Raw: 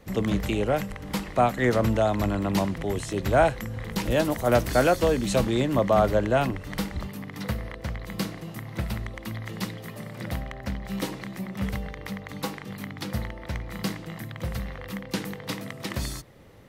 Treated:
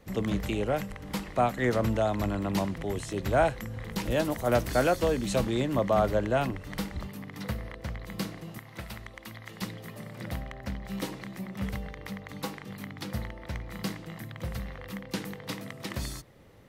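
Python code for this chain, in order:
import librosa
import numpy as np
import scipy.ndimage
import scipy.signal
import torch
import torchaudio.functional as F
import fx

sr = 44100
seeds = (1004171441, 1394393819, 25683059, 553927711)

y = fx.low_shelf(x, sr, hz=460.0, db=-9.0, at=(8.58, 9.62))
y = y * 10.0 ** (-4.0 / 20.0)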